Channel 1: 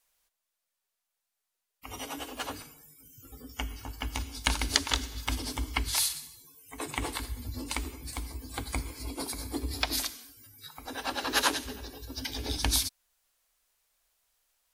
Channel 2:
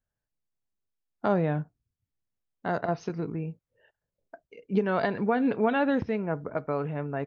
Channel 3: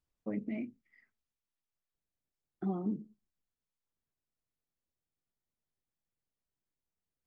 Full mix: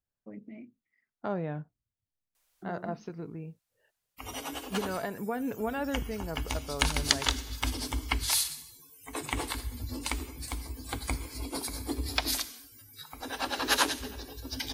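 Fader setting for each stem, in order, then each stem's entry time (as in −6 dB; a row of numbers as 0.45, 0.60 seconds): +0.5, −8.0, −8.5 decibels; 2.35, 0.00, 0.00 seconds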